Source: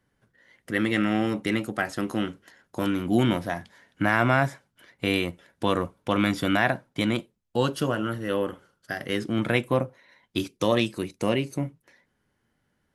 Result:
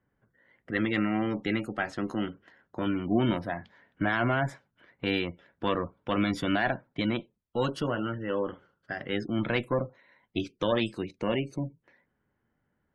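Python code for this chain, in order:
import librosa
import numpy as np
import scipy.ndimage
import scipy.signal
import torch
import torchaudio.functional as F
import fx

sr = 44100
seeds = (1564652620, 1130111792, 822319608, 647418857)

y = fx.tube_stage(x, sr, drive_db=11.0, bias=0.6)
y = fx.spec_gate(y, sr, threshold_db=-30, keep='strong')
y = fx.env_lowpass(y, sr, base_hz=1900.0, full_db=-22.5)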